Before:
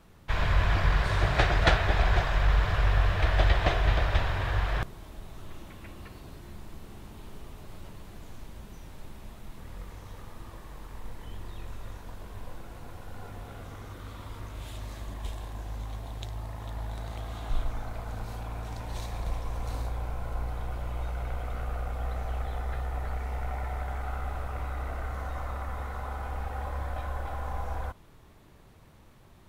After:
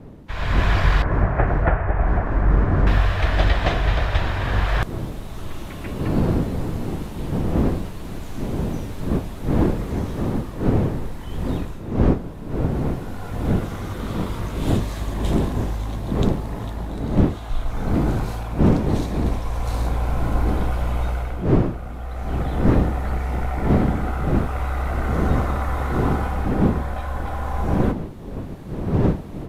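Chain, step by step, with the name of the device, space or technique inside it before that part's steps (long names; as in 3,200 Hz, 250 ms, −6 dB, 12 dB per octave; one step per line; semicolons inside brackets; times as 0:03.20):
0:01.02–0:02.87: Bessel low-pass filter 1,200 Hz, order 8
smartphone video outdoors (wind on the microphone 260 Hz −30 dBFS; automatic gain control gain up to 16.5 dB; level −4 dB; AAC 96 kbit/s 32,000 Hz)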